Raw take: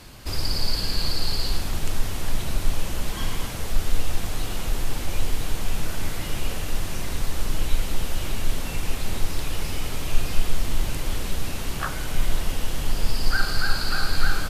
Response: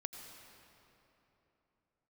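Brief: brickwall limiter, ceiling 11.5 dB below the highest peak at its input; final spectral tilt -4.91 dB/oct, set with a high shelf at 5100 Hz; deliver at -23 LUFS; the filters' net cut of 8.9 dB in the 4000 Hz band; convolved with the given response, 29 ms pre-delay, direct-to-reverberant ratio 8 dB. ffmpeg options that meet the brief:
-filter_complex "[0:a]equalizer=f=4k:t=o:g=-7,highshelf=f=5.1k:g=-8.5,alimiter=limit=-16.5dB:level=0:latency=1,asplit=2[a][b];[1:a]atrim=start_sample=2205,adelay=29[c];[b][c]afir=irnorm=-1:irlink=0,volume=-6dB[d];[a][d]amix=inputs=2:normalize=0,volume=10dB"

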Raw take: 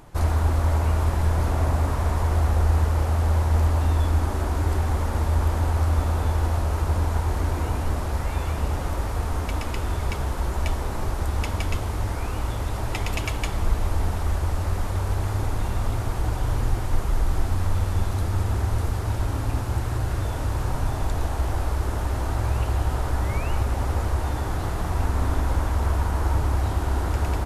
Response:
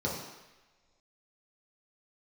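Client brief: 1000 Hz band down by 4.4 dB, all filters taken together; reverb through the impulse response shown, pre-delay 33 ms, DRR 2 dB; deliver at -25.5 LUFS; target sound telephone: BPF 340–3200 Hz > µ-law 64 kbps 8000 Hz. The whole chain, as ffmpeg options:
-filter_complex "[0:a]equalizer=f=1k:t=o:g=-5.5,asplit=2[a][b];[1:a]atrim=start_sample=2205,adelay=33[c];[b][c]afir=irnorm=-1:irlink=0,volume=-9.5dB[d];[a][d]amix=inputs=2:normalize=0,highpass=340,lowpass=3.2k,volume=7.5dB" -ar 8000 -c:a pcm_mulaw

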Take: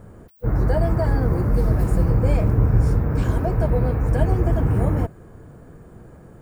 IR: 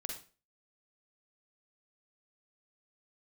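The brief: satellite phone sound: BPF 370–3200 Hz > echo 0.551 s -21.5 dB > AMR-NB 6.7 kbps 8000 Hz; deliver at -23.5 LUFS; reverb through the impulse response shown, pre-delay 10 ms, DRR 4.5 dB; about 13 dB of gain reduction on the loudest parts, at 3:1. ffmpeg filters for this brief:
-filter_complex "[0:a]acompressor=threshold=-30dB:ratio=3,asplit=2[a][b];[1:a]atrim=start_sample=2205,adelay=10[c];[b][c]afir=irnorm=-1:irlink=0,volume=-3.5dB[d];[a][d]amix=inputs=2:normalize=0,highpass=370,lowpass=3.2k,aecho=1:1:551:0.0841,volume=17dB" -ar 8000 -c:a libopencore_amrnb -b:a 6700

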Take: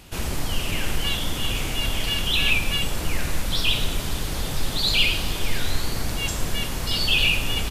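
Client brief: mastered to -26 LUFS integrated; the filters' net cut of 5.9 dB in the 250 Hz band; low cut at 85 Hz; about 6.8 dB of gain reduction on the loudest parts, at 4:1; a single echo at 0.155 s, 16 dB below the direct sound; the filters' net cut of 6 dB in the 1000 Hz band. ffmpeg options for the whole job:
-af "highpass=85,equalizer=f=250:t=o:g=-8,equalizer=f=1k:t=o:g=-7.5,acompressor=threshold=-25dB:ratio=4,aecho=1:1:155:0.158,volume=2dB"

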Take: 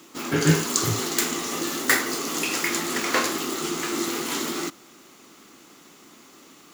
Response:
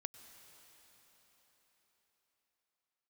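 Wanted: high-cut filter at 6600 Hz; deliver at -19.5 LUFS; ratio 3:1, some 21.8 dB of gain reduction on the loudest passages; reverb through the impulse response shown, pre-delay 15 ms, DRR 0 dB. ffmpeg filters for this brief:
-filter_complex "[0:a]lowpass=6.6k,acompressor=threshold=-44dB:ratio=3,asplit=2[a][b];[1:a]atrim=start_sample=2205,adelay=15[c];[b][c]afir=irnorm=-1:irlink=0,volume=3.5dB[d];[a][d]amix=inputs=2:normalize=0,volume=19.5dB"

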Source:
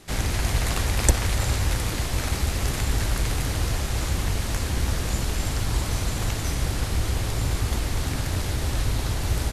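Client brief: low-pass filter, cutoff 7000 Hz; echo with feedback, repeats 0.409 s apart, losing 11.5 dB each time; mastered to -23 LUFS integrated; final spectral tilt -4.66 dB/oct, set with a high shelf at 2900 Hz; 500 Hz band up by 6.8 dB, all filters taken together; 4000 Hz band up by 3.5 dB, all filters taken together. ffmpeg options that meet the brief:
-af "lowpass=7k,equalizer=f=500:t=o:g=8.5,highshelf=f=2.9k:g=-3.5,equalizer=f=4k:t=o:g=7.5,aecho=1:1:409|818|1227:0.266|0.0718|0.0194,volume=2dB"

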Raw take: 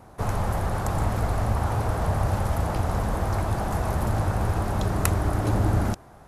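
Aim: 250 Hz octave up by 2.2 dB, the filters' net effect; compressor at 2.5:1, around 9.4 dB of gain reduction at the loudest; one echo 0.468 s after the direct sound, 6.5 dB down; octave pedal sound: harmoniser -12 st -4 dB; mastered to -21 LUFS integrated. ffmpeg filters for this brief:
-filter_complex "[0:a]equalizer=f=250:t=o:g=3,acompressor=threshold=-32dB:ratio=2.5,aecho=1:1:468:0.473,asplit=2[a][b];[b]asetrate=22050,aresample=44100,atempo=2,volume=-4dB[c];[a][c]amix=inputs=2:normalize=0,volume=10.5dB"

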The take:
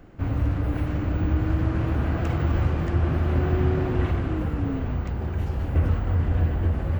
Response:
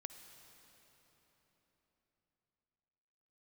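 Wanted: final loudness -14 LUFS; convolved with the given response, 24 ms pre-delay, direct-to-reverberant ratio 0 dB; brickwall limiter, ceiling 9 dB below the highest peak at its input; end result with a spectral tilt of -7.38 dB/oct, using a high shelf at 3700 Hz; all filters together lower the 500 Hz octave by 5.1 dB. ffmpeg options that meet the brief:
-filter_complex "[0:a]equalizer=f=500:t=o:g=-8,highshelf=f=3.7k:g=7,alimiter=limit=-20dB:level=0:latency=1,asplit=2[a][b];[1:a]atrim=start_sample=2205,adelay=24[c];[b][c]afir=irnorm=-1:irlink=0,volume=4.5dB[d];[a][d]amix=inputs=2:normalize=0,volume=11.5dB"

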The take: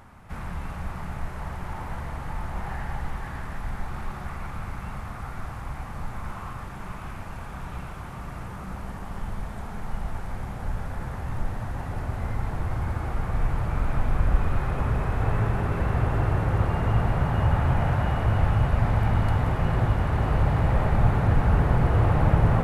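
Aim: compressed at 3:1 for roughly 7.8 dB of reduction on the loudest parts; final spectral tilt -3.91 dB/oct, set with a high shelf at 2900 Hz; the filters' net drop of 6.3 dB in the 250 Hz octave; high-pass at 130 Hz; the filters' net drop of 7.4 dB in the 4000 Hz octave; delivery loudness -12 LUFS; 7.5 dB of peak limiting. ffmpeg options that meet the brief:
-af "highpass=130,equalizer=f=250:t=o:g=-9,highshelf=f=2.9k:g=-4,equalizer=f=4k:t=o:g=-8,acompressor=threshold=-32dB:ratio=3,volume=27.5dB,alimiter=limit=-2dB:level=0:latency=1"

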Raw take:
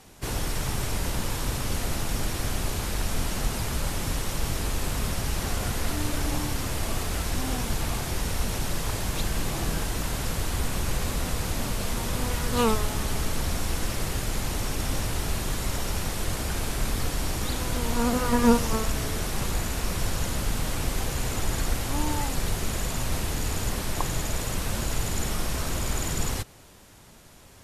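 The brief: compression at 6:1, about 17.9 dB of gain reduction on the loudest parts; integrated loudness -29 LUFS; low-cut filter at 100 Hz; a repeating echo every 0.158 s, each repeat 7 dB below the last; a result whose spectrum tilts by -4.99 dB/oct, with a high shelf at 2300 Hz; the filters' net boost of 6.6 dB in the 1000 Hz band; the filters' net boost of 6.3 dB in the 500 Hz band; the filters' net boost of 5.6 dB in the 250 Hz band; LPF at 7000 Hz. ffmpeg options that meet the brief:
-af "highpass=100,lowpass=7k,equalizer=f=250:t=o:g=5.5,equalizer=f=500:t=o:g=4.5,equalizer=f=1k:t=o:g=7,highshelf=f=2.3k:g=-3,acompressor=threshold=-27dB:ratio=6,aecho=1:1:158|316|474|632|790:0.447|0.201|0.0905|0.0407|0.0183,volume=1.5dB"

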